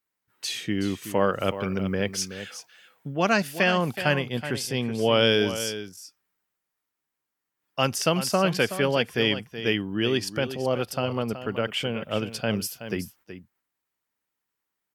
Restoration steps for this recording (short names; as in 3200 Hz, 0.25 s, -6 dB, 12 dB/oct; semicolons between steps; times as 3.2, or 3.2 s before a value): inverse comb 0.374 s -11.5 dB